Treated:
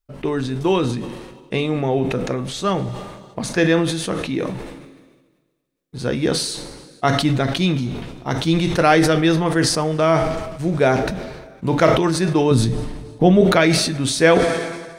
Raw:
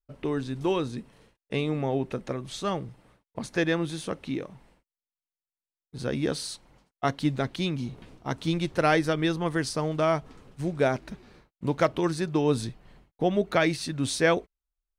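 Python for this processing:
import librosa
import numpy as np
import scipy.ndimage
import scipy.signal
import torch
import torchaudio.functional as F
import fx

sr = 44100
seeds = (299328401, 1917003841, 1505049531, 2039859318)

y = fx.low_shelf(x, sr, hz=250.0, db=9.0, at=(12.51, 13.41))
y = fx.rev_double_slope(y, sr, seeds[0], early_s=0.26, late_s=2.1, knee_db=-18, drr_db=8.5)
y = fx.sustainer(y, sr, db_per_s=44.0)
y = y * librosa.db_to_amplitude(7.0)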